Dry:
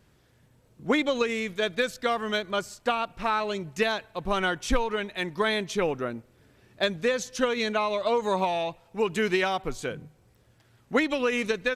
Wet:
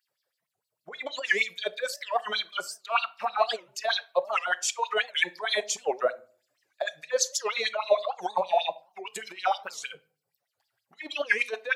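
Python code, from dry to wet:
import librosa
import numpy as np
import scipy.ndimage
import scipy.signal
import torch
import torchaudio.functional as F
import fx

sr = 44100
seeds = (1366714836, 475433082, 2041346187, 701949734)

y = fx.bin_expand(x, sr, power=1.5)
y = fx.peak_eq(y, sr, hz=7000.0, db=11.5, octaves=0.29, at=(4.19, 6.97))
y = fx.over_compress(y, sr, threshold_db=-32.0, ratio=-0.5)
y = fx.filter_lfo_highpass(y, sr, shape='sine', hz=6.4, low_hz=530.0, high_hz=4700.0, q=4.8)
y = fx.room_shoebox(y, sr, seeds[0], volume_m3=350.0, walls='furnished', distance_m=0.37)
y = fx.record_warp(y, sr, rpm=78.0, depth_cents=250.0)
y = F.gain(torch.from_numpy(y), 2.0).numpy()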